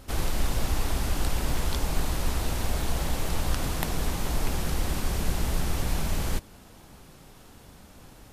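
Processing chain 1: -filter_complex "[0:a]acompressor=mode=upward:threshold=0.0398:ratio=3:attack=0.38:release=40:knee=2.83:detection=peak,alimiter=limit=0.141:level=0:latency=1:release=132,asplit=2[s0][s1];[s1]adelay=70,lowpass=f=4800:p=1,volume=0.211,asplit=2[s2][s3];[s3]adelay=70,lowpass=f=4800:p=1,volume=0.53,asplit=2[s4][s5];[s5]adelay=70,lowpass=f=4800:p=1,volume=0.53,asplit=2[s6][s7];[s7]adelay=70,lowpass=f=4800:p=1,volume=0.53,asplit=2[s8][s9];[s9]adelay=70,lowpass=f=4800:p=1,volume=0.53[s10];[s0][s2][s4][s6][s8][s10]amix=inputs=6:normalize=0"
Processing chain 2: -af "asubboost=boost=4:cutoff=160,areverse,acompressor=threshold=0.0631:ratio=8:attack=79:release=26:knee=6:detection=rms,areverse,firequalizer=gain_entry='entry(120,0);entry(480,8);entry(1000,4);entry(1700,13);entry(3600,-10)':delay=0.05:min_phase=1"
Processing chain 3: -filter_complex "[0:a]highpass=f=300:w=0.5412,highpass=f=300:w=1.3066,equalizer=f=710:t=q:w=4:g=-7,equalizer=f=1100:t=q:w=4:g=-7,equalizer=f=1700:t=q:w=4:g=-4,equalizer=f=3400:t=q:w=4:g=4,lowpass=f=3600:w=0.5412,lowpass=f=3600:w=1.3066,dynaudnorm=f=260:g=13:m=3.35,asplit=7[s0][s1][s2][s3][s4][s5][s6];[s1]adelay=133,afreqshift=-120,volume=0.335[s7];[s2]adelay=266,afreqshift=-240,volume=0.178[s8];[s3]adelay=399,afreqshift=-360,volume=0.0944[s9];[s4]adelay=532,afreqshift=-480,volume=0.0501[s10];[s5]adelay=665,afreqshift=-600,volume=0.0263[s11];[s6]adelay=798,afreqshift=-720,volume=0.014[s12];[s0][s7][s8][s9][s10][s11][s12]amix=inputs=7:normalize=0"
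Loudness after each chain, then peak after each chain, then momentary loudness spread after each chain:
-32.5 LUFS, -28.5 LUFS, -28.5 LUFS; -16.0 dBFS, -8.0 dBFS, -4.5 dBFS; 9 LU, 16 LU, 11 LU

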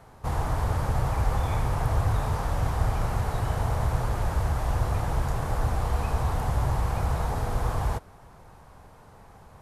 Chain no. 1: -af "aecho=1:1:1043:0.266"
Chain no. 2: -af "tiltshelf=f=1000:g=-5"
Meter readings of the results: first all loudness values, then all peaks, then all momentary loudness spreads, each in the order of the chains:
-28.0 LUFS, -31.0 LUFS; -12.0 dBFS, -16.5 dBFS; 13 LU, 2 LU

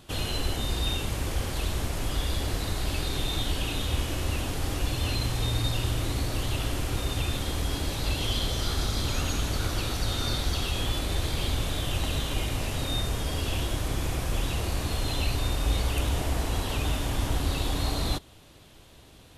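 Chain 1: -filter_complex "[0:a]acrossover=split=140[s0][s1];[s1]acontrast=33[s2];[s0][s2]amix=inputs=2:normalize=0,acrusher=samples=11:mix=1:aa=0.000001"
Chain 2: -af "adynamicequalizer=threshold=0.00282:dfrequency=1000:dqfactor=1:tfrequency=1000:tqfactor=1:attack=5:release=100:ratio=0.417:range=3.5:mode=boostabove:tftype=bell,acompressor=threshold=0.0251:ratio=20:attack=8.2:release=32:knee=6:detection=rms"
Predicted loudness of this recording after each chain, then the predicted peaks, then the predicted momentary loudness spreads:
-27.0 LUFS, -35.5 LUFS; -12.5 dBFS, -22.5 dBFS; 2 LU, 1 LU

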